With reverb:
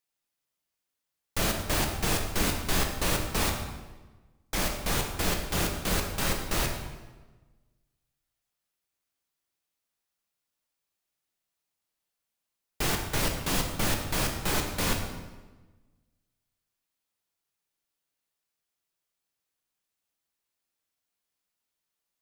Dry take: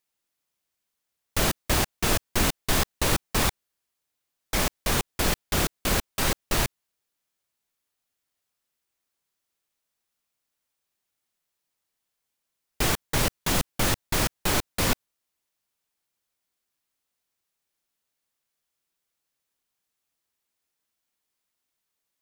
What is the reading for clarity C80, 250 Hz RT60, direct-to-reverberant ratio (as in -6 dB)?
7.0 dB, 1.5 s, 2.0 dB